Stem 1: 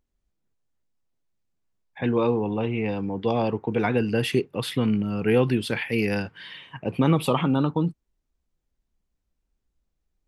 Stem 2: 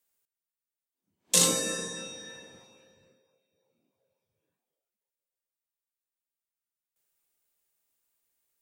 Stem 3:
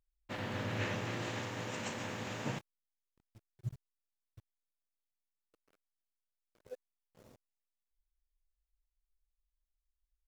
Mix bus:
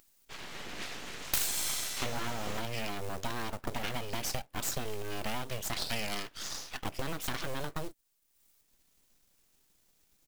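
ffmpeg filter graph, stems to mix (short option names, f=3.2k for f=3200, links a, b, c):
-filter_complex "[0:a]highpass=150,highshelf=f=9.5k:g=5.5,acrusher=bits=6:mode=log:mix=0:aa=0.000001,volume=-1dB[a];[1:a]volume=-4.5dB[b];[2:a]aecho=1:1:6.9:0.58,volume=-6dB[c];[a][b]amix=inputs=2:normalize=0,acompressor=threshold=-31dB:ratio=12,volume=0dB[d];[c][d]amix=inputs=2:normalize=0,aeval=exprs='abs(val(0))':c=same,highshelf=f=2.2k:g=9.5,acompressor=mode=upward:threshold=-56dB:ratio=2.5"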